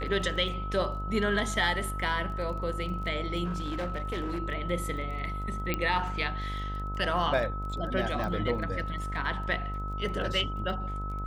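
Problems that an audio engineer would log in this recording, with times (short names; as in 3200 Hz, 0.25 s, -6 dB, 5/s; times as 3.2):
buzz 50 Hz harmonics 25 -35 dBFS
crackle 17/s -38 dBFS
tone 1300 Hz -37 dBFS
3.44–4.4 clipped -28 dBFS
5.74 pop -14 dBFS
8.24 pop -23 dBFS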